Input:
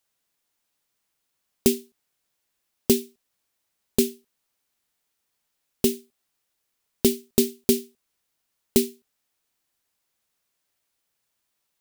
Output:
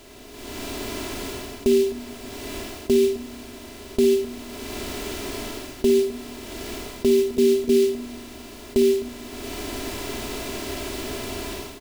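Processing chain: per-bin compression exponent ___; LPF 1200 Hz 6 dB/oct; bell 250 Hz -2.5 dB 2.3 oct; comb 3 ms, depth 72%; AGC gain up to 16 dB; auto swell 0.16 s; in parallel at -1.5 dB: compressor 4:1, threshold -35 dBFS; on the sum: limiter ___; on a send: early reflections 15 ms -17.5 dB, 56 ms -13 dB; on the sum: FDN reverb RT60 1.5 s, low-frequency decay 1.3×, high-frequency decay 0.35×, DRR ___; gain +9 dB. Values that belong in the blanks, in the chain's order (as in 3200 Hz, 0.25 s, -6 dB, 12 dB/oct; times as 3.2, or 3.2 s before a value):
0.6, -18.5 dBFS, 9.5 dB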